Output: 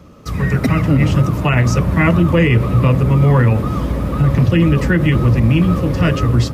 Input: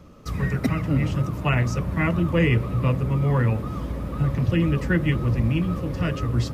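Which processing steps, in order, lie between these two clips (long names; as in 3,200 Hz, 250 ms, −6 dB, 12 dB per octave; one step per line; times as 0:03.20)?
high-pass filter 42 Hz
brickwall limiter −15.5 dBFS, peak gain reduction 6 dB
automatic gain control gain up to 5 dB
level +6 dB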